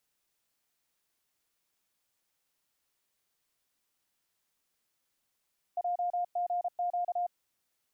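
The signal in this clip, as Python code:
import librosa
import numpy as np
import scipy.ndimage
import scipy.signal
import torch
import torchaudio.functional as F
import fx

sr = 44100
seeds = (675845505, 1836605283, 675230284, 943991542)

y = fx.morse(sr, text='JGQ', wpm=33, hz=707.0, level_db=-28.0)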